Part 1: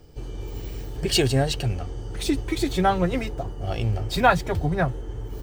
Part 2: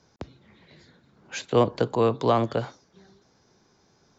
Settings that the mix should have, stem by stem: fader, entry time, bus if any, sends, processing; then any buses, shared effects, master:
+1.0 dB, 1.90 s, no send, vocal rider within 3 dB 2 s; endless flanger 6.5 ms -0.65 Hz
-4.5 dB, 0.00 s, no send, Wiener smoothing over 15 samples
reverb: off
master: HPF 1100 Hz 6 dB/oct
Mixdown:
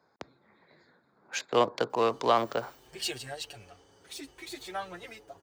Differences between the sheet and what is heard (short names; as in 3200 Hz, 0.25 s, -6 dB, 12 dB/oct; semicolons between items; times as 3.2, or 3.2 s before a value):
stem 1 +1.0 dB -> -8.0 dB; stem 2 -4.5 dB -> +3.5 dB